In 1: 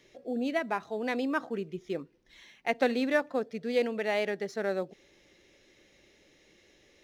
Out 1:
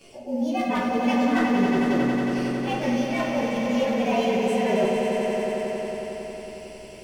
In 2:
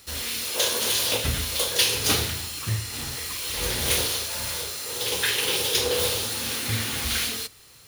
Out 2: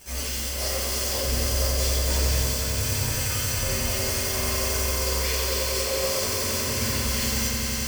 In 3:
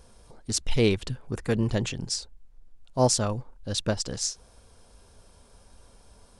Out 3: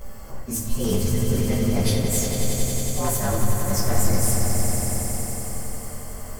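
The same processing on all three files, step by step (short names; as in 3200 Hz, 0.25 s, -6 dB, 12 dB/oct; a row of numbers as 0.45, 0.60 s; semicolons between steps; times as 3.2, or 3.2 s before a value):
inharmonic rescaling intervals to 113%; notch 3800 Hz, Q 6.8; reverse; compressor 16:1, threshold -39 dBFS; reverse; wavefolder -34 dBFS; swelling echo 91 ms, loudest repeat 5, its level -8 dB; shoebox room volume 190 m³, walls mixed, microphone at 1.1 m; match loudness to -24 LUFS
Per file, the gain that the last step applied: +13.0, +10.0, +14.5 dB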